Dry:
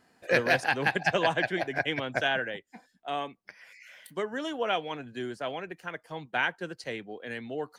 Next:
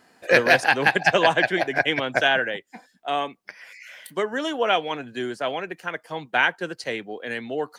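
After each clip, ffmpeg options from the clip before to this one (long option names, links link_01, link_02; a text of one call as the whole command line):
ffmpeg -i in.wav -af "lowshelf=frequency=140:gain=-10.5,volume=8dB" out.wav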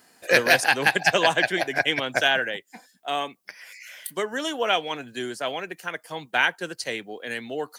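ffmpeg -i in.wav -af "crystalizer=i=2.5:c=0,volume=-3dB" out.wav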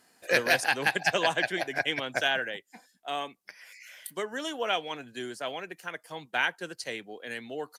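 ffmpeg -i in.wav -af "aresample=32000,aresample=44100,volume=-6dB" out.wav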